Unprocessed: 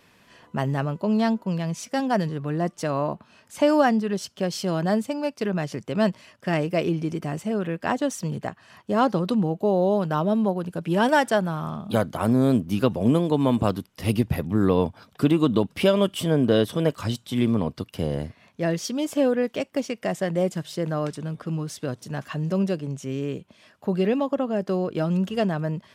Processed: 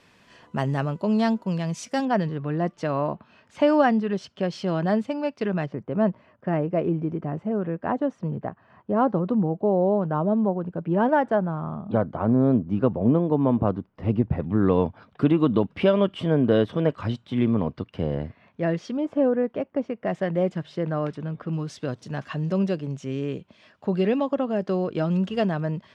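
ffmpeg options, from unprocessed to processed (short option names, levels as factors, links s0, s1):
-af "asetnsamples=n=441:p=0,asendcmd='2.05 lowpass f 3300;5.66 lowpass f 1200;14.4 lowpass f 2400;18.97 lowpass f 1300;20.07 lowpass f 2600;21.53 lowpass f 4800',lowpass=8300"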